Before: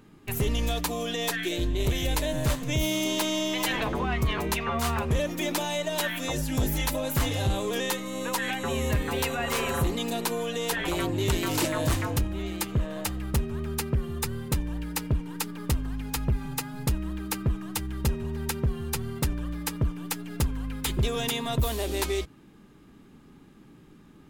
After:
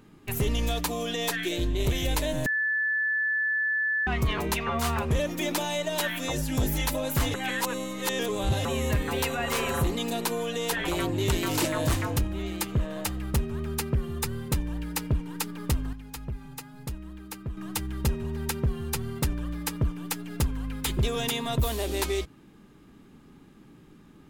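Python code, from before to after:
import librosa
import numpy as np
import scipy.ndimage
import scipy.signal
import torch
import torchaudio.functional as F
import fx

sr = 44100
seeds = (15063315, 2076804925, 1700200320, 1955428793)

y = fx.edit(x, sr, fx.bleep(start_s=2.46, length_s=1.61, hz=1740.0, db=-23.5),
    fx.reverse_span(start_s=7.34, length_s=1.31),
    fx.clip_gain(start_s=15.93, length_s=1.64, db=-9.0), tone=tone)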